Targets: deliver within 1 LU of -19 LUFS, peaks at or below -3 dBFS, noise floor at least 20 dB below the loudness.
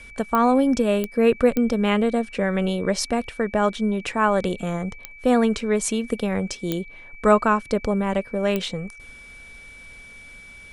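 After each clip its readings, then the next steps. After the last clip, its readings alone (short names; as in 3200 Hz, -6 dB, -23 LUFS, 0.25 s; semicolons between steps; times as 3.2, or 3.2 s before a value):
clicks 6; steady tone 2300 Hz; tone level -42 dBFS; loudness -22.5 LUFS; peak -3.5 dBFS; loudness target -19.0 LUFS
-> de-click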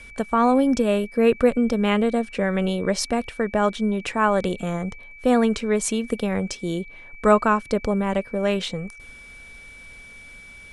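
clicks 0; steady tone 2300 Hz; tone level -42 dBFS
-> notch 2300 Hz, Q 30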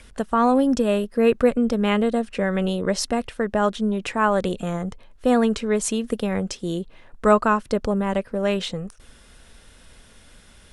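steady tone none; loudness -22.5 LUFS; peak -3.5 dBFS; loudness target -19.0 LUFS
-> gain +3.5 dB; limiter -3 dBFS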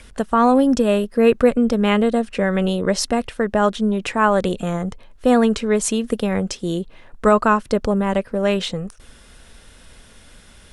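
loudness -19.0 LUFS; peak -3.0 dBFS; noise floor -47 dBFS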